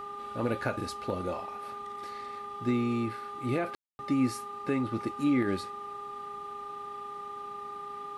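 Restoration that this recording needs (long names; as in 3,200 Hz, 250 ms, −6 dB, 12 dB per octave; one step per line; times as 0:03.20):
hum removal 409.4 Hz, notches 3
notch filter 1,200 Hz, Q 30
ambience match 0:03.75–0:03.99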